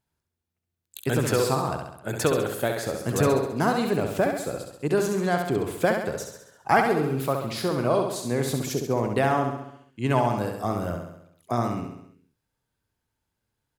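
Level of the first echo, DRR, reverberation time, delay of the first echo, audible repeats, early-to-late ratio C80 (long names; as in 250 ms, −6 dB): −5.5 dB, no reverb audible, no reverb audible, 67 ms, 6, no reverb audible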